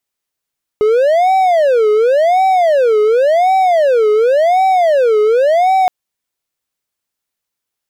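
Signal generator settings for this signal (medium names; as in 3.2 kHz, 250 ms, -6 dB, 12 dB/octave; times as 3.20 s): siren wail 422–765 Hz 0.91 per s triangle -6 dBFS 5.07 s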